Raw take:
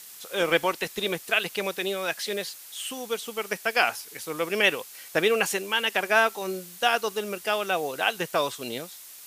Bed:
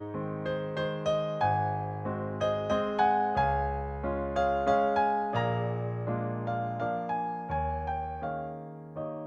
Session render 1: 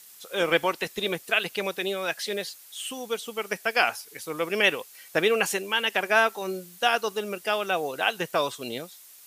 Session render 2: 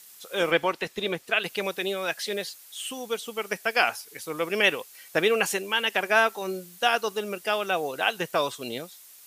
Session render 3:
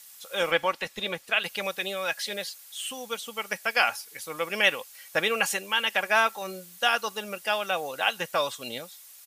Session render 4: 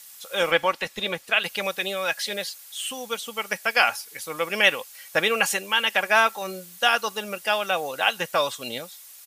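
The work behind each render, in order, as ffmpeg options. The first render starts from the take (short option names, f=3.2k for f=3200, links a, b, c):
-af "afftdn=nr=6:nf=-45"
-filter_complex "[0:a]asettb=1/sr,asplit=3[a][b][c];[a]atrim=end=0.514[d];[b]atrim=start=0.51:end=1.44,asetpts=PTS-STARTPTS,afade=t=in:d=0.004:c=qsin,afade=t=out:st=0.926:d=0.004:c=qsin,highshelf=f=6.7k:g=-10[e];[c]atrim=start=1.436[f];[d][e]acrossfade=d=0.004:c1=hsin:c2=qsin[g];[g][f]acrossfade=d=0.004:c1=qsin:c2=hsin"
-af "equalizer=f=310:t=o:w=1:g=-10,aecho=1:1:3.6:0.35"
-af "volume=3.5dB"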